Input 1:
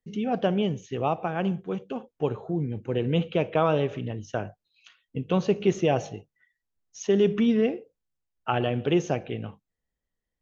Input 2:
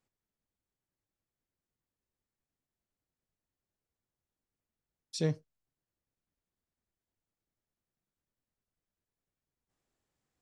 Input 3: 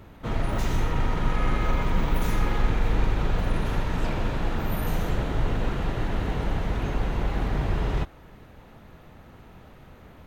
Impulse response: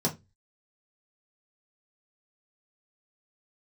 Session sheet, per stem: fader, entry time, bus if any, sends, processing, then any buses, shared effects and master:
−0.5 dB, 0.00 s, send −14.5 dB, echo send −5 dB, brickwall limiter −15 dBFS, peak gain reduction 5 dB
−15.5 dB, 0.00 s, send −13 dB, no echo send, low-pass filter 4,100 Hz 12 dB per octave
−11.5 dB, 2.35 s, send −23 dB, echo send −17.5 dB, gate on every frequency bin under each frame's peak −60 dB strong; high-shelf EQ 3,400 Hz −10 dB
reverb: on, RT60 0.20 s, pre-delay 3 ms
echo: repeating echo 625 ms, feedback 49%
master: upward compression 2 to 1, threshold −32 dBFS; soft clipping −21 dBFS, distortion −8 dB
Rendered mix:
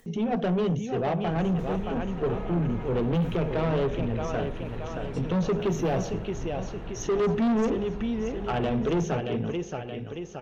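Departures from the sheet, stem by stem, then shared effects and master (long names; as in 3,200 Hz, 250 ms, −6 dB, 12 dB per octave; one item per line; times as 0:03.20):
stem 2: missing low-pass filter 4,100 Hz 12 dB per octave
stem 3: entry 2.35 s → 1.00 s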